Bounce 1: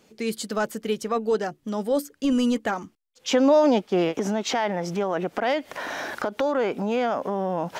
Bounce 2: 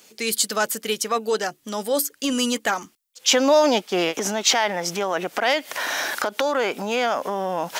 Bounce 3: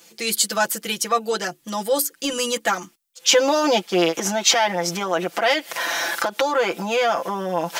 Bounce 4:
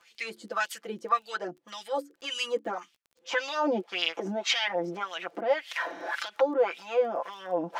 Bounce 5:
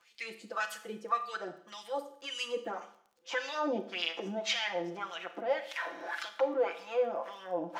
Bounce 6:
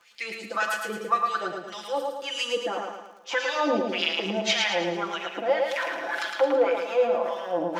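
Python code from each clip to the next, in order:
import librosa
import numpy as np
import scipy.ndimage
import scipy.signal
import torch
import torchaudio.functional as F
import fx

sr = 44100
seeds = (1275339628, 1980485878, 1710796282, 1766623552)

y1 = fx.tilt_eq(x, sr, slope=3.5)
y1 = F.gain(torch.from_numpy(y1), 4.0).numpy()
y2 = y1 + 0.93 * np.pad(y1, (int(5.9 * sr / 1000.0), 0))[:len(y1)]
y2 = F.gain(torch.from_numpy(y2), -1.0).numpy()
y3 = fx.wah_lfo(y2, sr, hz=1.8, low_hz=280.0, high_hz=3400.0, q=2.3)
y3 = fx.dmg_crackle(y3, sr, seeds[0], per_s=15.0, level_db=-46.0)
y4 = fx.rev_schroeder(y3, sr, rt60_s=0.62, comb_ms=26, drr_db=9.0)
y4 = F.gain(torch.from_numpy(y4), -5.5).numpy()
y5 = fx.echo_feedback(y4, sr, ms=110, feedback_pct=46, wet_db=-4)
y5 = F.gain(torch.from_numpy(y5), 7.0).numpy()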